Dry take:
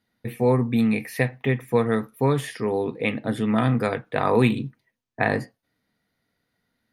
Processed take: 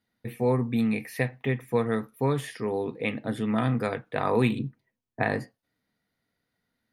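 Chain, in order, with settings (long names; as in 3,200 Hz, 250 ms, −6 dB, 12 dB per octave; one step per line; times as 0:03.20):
0:04.59–0:05.23: tilt shelving filter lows +4 dB
level −4.5 dB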